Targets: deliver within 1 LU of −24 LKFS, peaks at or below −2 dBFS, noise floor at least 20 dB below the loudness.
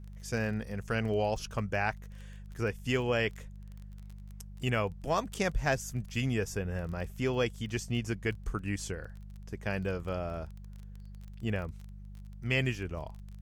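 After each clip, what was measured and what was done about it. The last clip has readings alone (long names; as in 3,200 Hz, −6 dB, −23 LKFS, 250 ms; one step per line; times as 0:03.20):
crackle rate 26 per second; mains hum 50 Hz; hum harmonics up to 200 Hz; level of the hum −43 dBFS; integrated loudness −33.5 LKFS; sample peak −16.0 dBFS; target loudness −24.0 LKFS
→ click removal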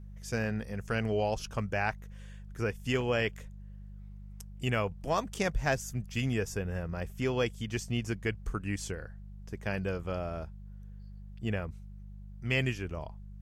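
crackle rate 0.075 per second; mains hum 50 Hz; hum harmonics up to 200 Hz; level of the hum −43 dBFS
→ hum removal 50 Hz, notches 4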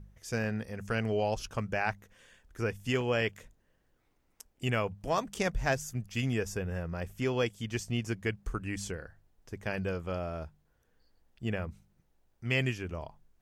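mains hum none found; integrated loudness −34.0 LKFS; sample peak −16.0 dBFS; target loudness −24.0 LKFS
→ level +10 dB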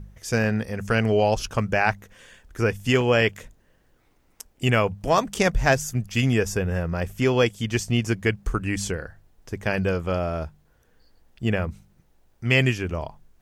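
integrated loudness −24.0 LKFS; sample peak −6.0 dBFS; background noise floor −62 dBFS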